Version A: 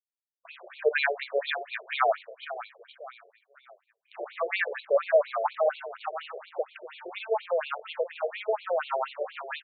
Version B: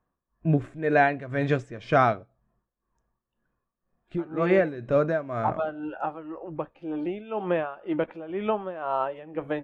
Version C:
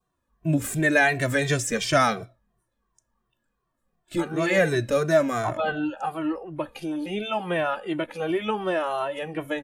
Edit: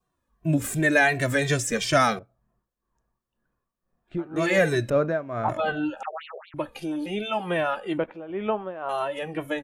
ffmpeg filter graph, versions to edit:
-filter_complex "[1:a]asplit=3[a][b][c];[2:a]asplit=5[d][e][f][g][h];[d]atrim=end=2.192[i];[a]atrim=start=2.188:end=4.362[j];[e]atrim=start=4.358:end=4.902[k];[b]atrim=start=4.898:end=5.492[l];[f]atrim=start=5.488:end=6.032[m];[0:a]atrim=start=6.028:end=6.542[n];[g]atrim=start=6.538:end=7.982[o];[c]atrim=start=7.978:end=8.892[p];[h]atrim=start=8.888[q];[i][j]acrossfade=d=0.004:c1=hsin:c2=hsin[r];[r][k]acrossfade=d=0.004:c1=hsin:c2=hsin[s];[s][l]acrossfade=d=0.004:c1=hsin:c2=hsin[t];[t][m]acrossfade=d=0.004:c1=hsin:c2=hsin[u];[u][n]acrossfade=d=0.004:c1=hsin:c2=hsin[v];[v][o]acrossfade=d=0.004:c1=hsin:c2=hsin[w];[w][p]acrossfade=d=0.004:c1=hsin:c2=hsin[x];[x][q]acrossfade=d=0.004:c1=hsin:c2=hsin"

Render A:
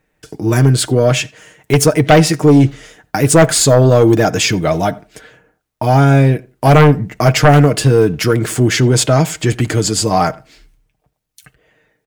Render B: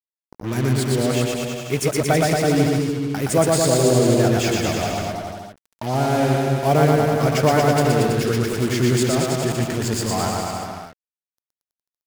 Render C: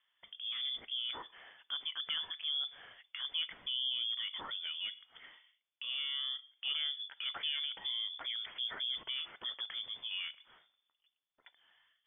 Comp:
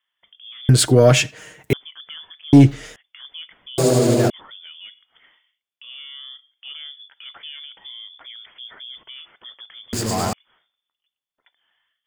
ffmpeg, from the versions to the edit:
-filter_complex "[0:a]asplit=2[a][b];[1:a]asplit=2[c][d];[2:a]asplit=5[e][f][g][h][i];[e]atrim=end=0.692[j];[a]atrim=start=0.688:end=1.732[k];[f]atrim=start=1.728:end=2.532[l];[b]atrim=start=2.528:end=2.962[m];[g]atrim=start=2.958:end=3.782[n];[c]atrim=start=3.778:end=4.302[o];[h]atrim=start=4.298:end=9.932[p];[d]atrim=start=9.928:end=10.332[q];[i]atrim=start=10.328[r];[j][k]acrossfade=d=0.004:c1=hsin:c2=hsin[s];[s][l]acrossfade=d=0.004:c1=hsin:c2=hsin[t];[t][m]acrossfade=d=0.004:c1=hsin:c2=hsin[u];[u][n]acrossfade=d=0.004:c1=hsin:c2=hsin[v];[v][o]acrossfade=d=0.004:c1=hsin:c2=hsin[w];[w][p]acrossfade=d=0.004:c1=hsin:c2=hsin[x];[x][q]acrossfade=d=0.004:c1=hsin:c2=hsin[y];[y][r]acrossfade=d=0.004:c1=hsin:c2=hsin"

